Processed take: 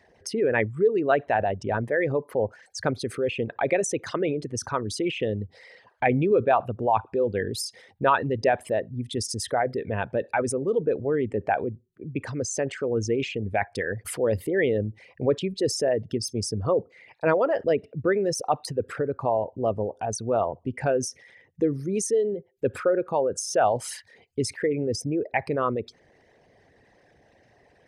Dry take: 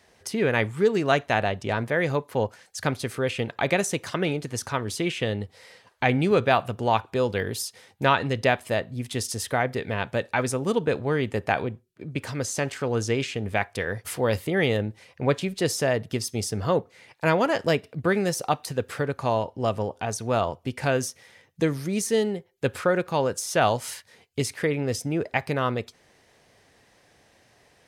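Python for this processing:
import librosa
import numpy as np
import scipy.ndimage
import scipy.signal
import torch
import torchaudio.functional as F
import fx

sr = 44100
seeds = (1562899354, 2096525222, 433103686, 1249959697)

y = fx.envelope_sharpen(x, sr, power=2.0)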